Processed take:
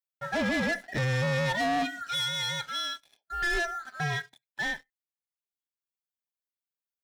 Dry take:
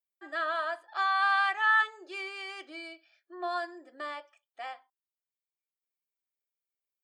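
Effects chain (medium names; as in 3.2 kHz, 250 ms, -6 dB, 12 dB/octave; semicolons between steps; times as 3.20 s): split-band scrambler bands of 1 kHz; peak limiter -23.5 dBFS, peak gain reduction 7.5 dB; waveshaping leveller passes 3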